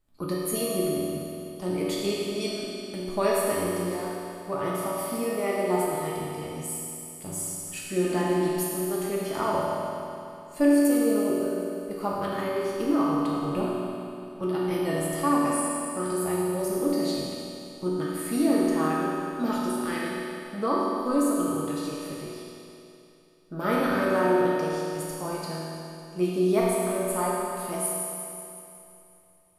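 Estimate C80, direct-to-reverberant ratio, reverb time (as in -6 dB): -1.5 dB, -6.5 dB, 2.9 s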